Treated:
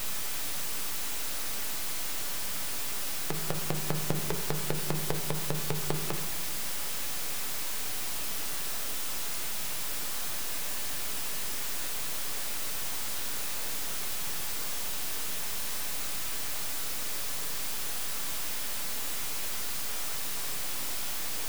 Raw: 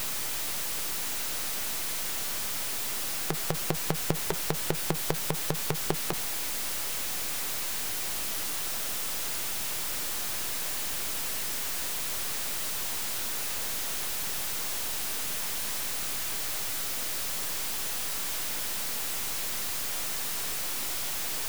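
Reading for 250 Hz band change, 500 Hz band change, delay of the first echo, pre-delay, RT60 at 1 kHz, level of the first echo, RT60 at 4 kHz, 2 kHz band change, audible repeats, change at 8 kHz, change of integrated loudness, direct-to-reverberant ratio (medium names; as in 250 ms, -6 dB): -1.0 dB, -2.0 dB, no echo, 7 ms, 1.3 s, no echo, 0.90 s, -2.5 dB, no echo, -2.5 dB, -2.5 dB, 4.5 dB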